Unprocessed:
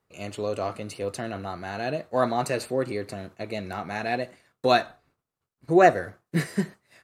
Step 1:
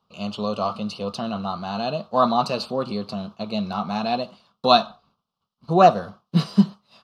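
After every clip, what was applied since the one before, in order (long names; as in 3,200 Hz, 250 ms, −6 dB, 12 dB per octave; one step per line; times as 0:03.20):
drawn EQ curve 130 Hz 0 dB, 210 Hz +14 dB, 300 Hz −5 dB, 1,200 Hz +12 dB, 1,900 Hz −16 dB, 3,000 Hz +11 dB, 5,100 Hz +9 dB, 7,500 Hz −9 dB
level −1 dB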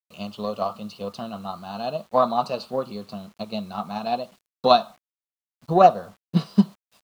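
dynamic equaliser 630 Hz, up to +5 dB, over −29 dBFS, Q 0.97
transient designer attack +7 dB, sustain 0 dB
bit reduction 8 bits
level −8 dB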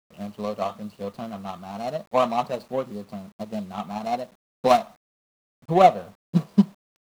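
running median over 25 samples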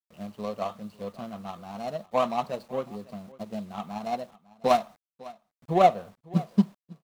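single-tap delay 552 ms −21 dB
level −4 dB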